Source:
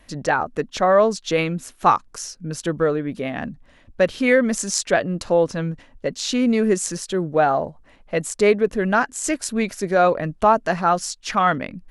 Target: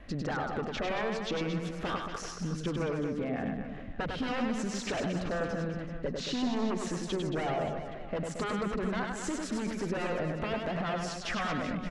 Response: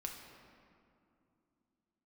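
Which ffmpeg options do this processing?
-filter_complex "[0:a]bandreject=f=940:w=5.6,aeval=exprs='0.141*(abs(mod(val(0)/0.141+3,4)-2)-1)':c=same,highshelf=f=5.2k:g=-11.5,alimiter=level_in=1.5dB:limit=-24dB:level=0:latency=1:release=16,volume=-1.5dB,aemphasis=mode=reproduction:type=75fm,acompressor=threshold=-36dB:ratio=4,asplit=2[a][b];[b]aecho=0:1:100|225|381.2|576.6|820.7:0.631|0.398|0.251|0.158|0.1[c];[a][c]amix=inputs=2:normalize=0,volume=3.5dB"

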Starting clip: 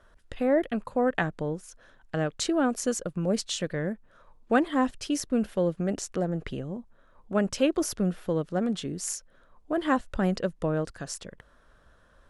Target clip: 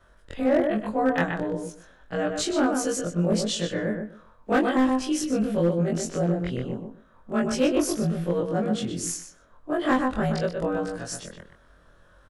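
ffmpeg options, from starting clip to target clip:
-filter_complex "[0:a]afftfilt=real='re':imag='-im':win_size=2048:overlap=0.75,asplit=2[a][b];[b]adelay=124,lowpass=f=3.3k:p=1,volume=-5dB,asplit=2[c][d];[d]adelay=124,lowpass=f=3.3k:p=1,volume=0.18,asplit=2[e][f];[f]adelay=124,lowpass=f=3.3k:p=1,volume=0.18[g];[a][c][e][g]amix=inputs=4:normalize=0,volume=21dB,asoftclip=hard,volume=-21dB,volume=6.5dB"

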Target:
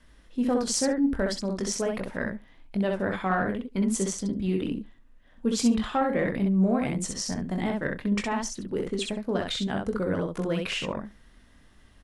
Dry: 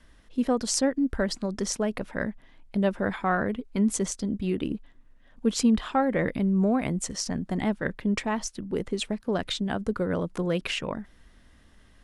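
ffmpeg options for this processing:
-filter_complex "[0:a]asplit=2[a][b];[b]aecho=0:1:21|64:0.422|0.668[c];[a][c]amix=inputs=2:normalize=0,acontrast=86,asplit=2[d][e];[e]aecho=0:1:72:0.0794[f];[d][f]amix=inputs=2:normalize=0,volume=-9dB"

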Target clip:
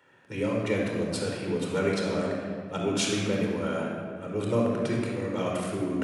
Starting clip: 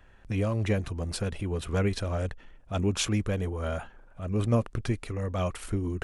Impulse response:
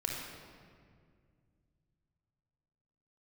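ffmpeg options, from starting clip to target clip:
-filter_complex "[0:a]highpass=f=160:w=0.5412,highpass=f=160:w=1.3066[a];[1:a]atrim=start_sample=2205[b];[a][b]afir=irnorm=-1:irlink=0"

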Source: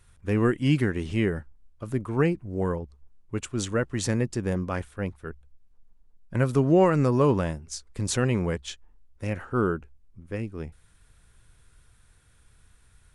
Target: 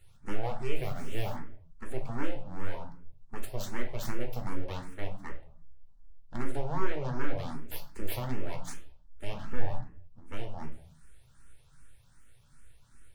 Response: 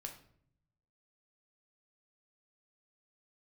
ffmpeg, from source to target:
-filter_complex "[0:a]aeval=exprs='abs(val(0))':c=same,asettb=1/sr,asplit=3[a][b][c];[a]atrim=end=6.724[d];[b]atrim=start=6.72:end=7.35,asetpts=PTS-STARTPTS,afade=t=in:d=0.004:c=qsin,afade=t=out:st=0.626:d=0.004:c=qsin,lowpass=6.9k[e];[c]atrim=start=7.346[f];[d][e]acrossfade=d=0.004:c1=hsin:c2=qsin[g];[g][f]acrossfade=d=0.004:c1=qsin:c2=hsin,asettb=1/sr,asplit=3[h][i][j];[h]atrim=end=9.344[k];[i]atrim=start=9.34:end=9.74,asetpts=PTS-STARTPTS,afade=t=in:d=0.004:c=qsin,afade=t=out:st=0.396:d=0.004:c=qsin,lowshelf=f=210:g=10.5[l];[j]atrim=start=9.736[m];[k][l]acrossfade=d=0.004:c1=hsin:c2=qsin[n];[n][m]acrossfade=d=0.004:c1=qsin:c2=hsin,acompressor=threshold=-30dB:ratio=2.5[o];[1:a]atrim=start_sample=2205,afade=t=out:st=0.4:d=0.01,atrim=end_sample=18081[p];[o][p]afir=irnorm=-1:irlink=0,asplit=3[q][r][s];[q]afade=t=out:st=0.75:d=0.02[t];[r]acrusher=bits=8:mode=log:mix=0:aa=0.000001,afade=t=in:st=0.75:d=0.02,afade=t=out:st=1.35:d=0.02[u];[s]afade=t=in:st=1.35:d=0.02[v];[t][u][v]amix=inputs=3:normalize=0,asplit=2[w][x];[x]afreqshift=2.6[y];[w][y]amix=inputs=2:normalize=1,volume=4.5dB"

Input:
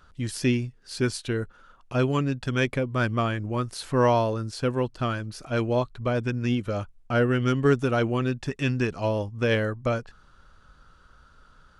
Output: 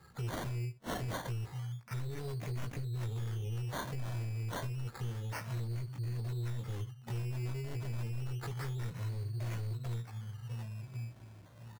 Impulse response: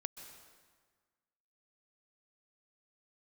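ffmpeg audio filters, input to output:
-filter_complex "[0:a]highpass=f=110:w=0.5412,highpass=f=110:w=1.3066,asplit=2[a][b];[b]adelay=1086,lowpass=f=4.7k:p=1,volume=-17.5dB,asplit=2[c][d];[d]adelay=1086,lowpass=f=4.7k:p=1,volume=0.2[e];[c][e]amix=inputs=2:normalize=0[f];[a][f]amix=inputs=2:normalize=0,asplit=2[g][h];[h]asetrate=88200,aresample=44100,atempo=0.5,volume=-10dB[i];[g][i]amix=inputs=2:normalize=0,volume=22.5dB,asoftclip=hard,volume=-22.5dB,afftfilt=real='re*(1-between(b*sr/4096,230,4100))':imag='im*(1-between(b*sr/4096,230,4100))':win_size=4096:overlap=0.75,asoftclip=type=tanh:threshold=-36dB,asplit=2[j][k];[k]aecho=0:1:17|76:0.596|0.133[l];[j][l]amix=inputs=2:normalize=0,adynamicequalizer=threshold=0.00126:dfrequency=690:dqfactor=1:tfrequency=690:tqfactor=1:attack=5:release=100:ratio=0.375:range=1.5:mode=cutabove:tftype=bell,acompressor=threshold=-45dB:ratio=5,aecho=1:1:2.4:0.7,acrusher=samples=14:mix=1:aa=0.000001:lfo=1:lforange=8.4:lforate=0.29,volume=7.5dB"

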